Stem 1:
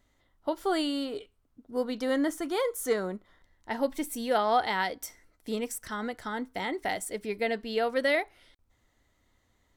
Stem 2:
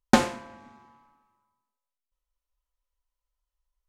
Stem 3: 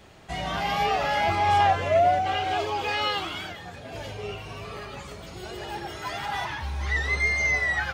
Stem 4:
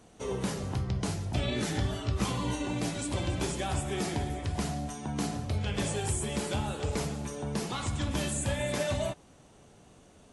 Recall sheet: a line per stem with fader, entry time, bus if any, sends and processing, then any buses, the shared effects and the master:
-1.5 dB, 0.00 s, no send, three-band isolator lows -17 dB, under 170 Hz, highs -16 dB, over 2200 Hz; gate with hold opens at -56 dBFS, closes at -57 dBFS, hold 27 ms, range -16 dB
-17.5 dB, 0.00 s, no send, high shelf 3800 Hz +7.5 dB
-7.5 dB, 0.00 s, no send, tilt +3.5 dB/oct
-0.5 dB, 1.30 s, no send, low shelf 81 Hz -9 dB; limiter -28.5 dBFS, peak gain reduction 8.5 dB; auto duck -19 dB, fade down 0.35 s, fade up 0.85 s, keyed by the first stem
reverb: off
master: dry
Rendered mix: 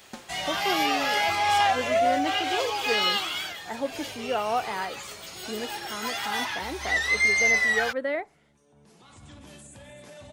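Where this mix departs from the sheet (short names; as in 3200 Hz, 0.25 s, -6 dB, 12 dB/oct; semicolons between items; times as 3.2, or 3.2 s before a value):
stem 2 -17.5 dB -> -24.5 dB; stem 3 -7.5 dB -> -1.0 dB; stem 4 -0.5 dB -> -9.5 dB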